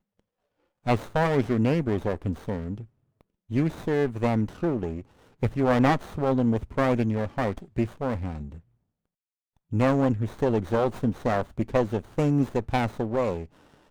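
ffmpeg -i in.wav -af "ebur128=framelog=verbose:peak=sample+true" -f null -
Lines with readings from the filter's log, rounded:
Integrated loudness:
  I:         -26.4 LUFS
  Threshold: -36.9 LUFS
Loudness range:
  LRA:         3.5 LU
  Threshold: -47.2 LUFS
  LRA low:   -29.1 LUFS
  LRA high:  -25.6 LUFS
Sample peak:
  Peak:       -9.8 dBFS
True peak:
  Peak:       -9.8 dBFS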